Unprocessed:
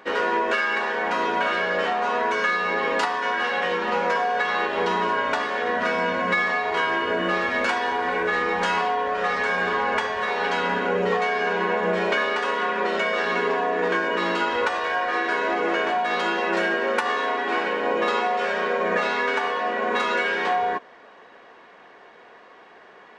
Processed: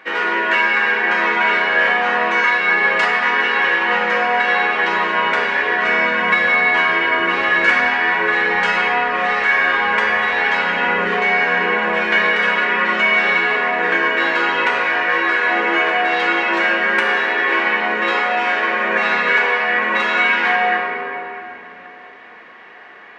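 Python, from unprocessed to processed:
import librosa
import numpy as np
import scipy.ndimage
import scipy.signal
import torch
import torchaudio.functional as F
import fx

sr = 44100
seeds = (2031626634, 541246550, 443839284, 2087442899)

y = fx.peak_eq(x, sr, hz=2100.0, db=12.5, octaves=1.4)
y = fx.room_shoebox(y, sr, seeds[0], volume_m3=220.0, walls='hard', distance_m=0.62)
y = F.gain(torch.from_numpy(y), -3.5).numpy()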